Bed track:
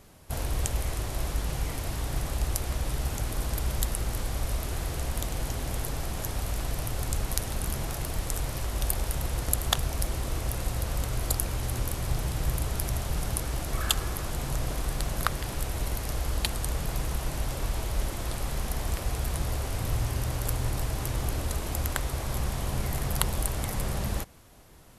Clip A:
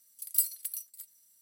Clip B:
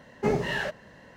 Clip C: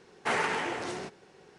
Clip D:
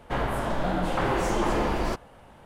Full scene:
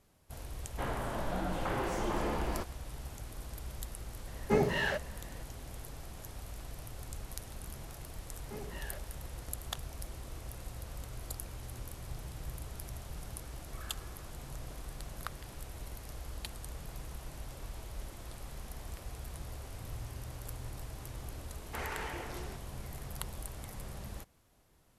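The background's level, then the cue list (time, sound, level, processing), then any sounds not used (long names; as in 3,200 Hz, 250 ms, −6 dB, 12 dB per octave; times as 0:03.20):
bed track −14 dB
0:00.68: mix in D −9 dB
0:04.27: mix in B −2.5 dB
0:08.28: mix in B −13 dB + downward compressor 2 to 1, threshold −34 dBFS
0:21.48: mix in C −9.5 dB + brickwall limiter −21 dBFS
not used: A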